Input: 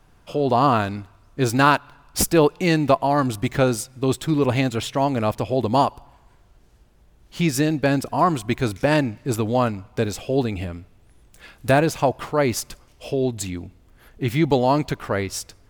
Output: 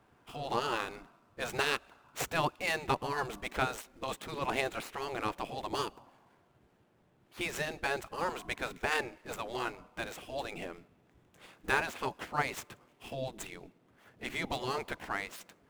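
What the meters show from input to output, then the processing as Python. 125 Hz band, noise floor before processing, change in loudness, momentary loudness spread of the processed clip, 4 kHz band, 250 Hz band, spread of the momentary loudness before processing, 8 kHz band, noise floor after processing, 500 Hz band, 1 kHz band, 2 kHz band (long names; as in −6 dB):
−22.0 dB, −55 dBFS, −14.5 dB, 13 LU, −8.5 dB, −21.5 dB, 12 LU, −14.5 dB, −68 dBFS, −16.5 dB, −13.0 dB, −7.0 dB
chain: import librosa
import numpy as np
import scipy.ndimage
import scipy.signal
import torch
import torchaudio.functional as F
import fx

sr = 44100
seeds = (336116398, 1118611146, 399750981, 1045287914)

y = scipy.ndimage.median_filter(x, 9, mode='constant')
y = fx.spec_gate(y, sr, threshold_db=-10, keep='weak')
y = y * librosa.db_to_amplitude(-4.5)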